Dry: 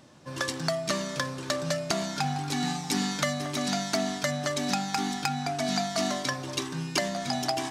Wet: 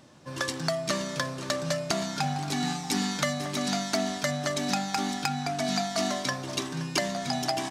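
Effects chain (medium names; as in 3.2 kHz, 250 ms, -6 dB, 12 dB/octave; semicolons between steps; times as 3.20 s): delay 522 ms -16 dB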